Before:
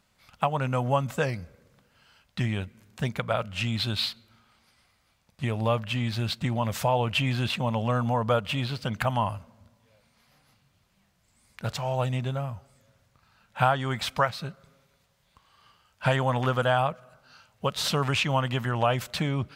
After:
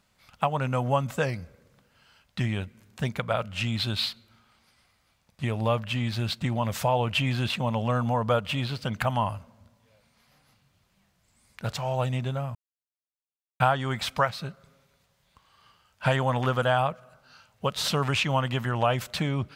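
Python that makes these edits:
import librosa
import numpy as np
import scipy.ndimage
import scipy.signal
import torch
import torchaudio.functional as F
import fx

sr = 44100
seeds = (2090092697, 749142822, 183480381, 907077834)

y = fx.edit(x, sr, fx.silence(start_s=12.55, length_s=1.05), tone=tone)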